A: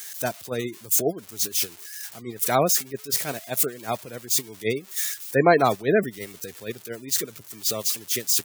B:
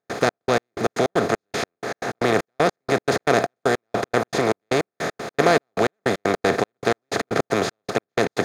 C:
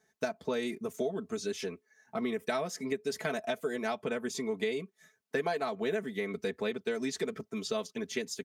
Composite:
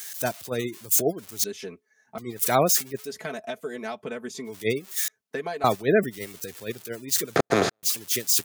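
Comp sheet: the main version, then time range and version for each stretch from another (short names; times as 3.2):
A
1.44–2.18 from C
3.07–4.49 from C, crossfade 0.10 s
5.08–5.64 from C
7.36–7.83 from B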